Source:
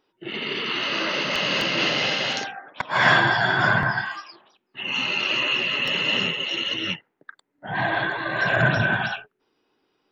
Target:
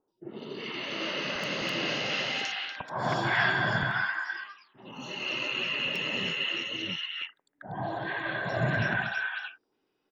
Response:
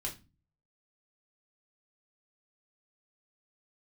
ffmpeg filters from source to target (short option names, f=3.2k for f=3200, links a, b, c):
-filter_complex "[0:a]acrossover=split=1100|4000[a][b][c];[c]adelay=80[d];[b]adelay=320[e];[a][e][d]amix=inputs=3:normalize=0,volume=-6dB"